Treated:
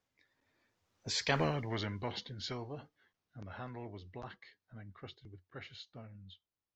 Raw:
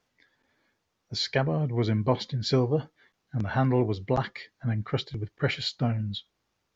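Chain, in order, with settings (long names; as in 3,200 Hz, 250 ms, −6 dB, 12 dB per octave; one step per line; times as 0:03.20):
source passing by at 0:01.42, 17 m/s, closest 1.1 metres
parametric band 90 Hz +7.5 dB 0.41 octaves
every bin compressed towards the loudest bin 2 to 1
level +1 dB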